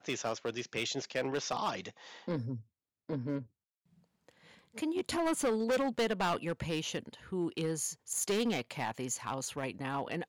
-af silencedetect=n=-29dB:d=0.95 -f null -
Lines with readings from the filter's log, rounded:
silence_start: 3.38
silence_end: 4.78 | silence_duration: 1.40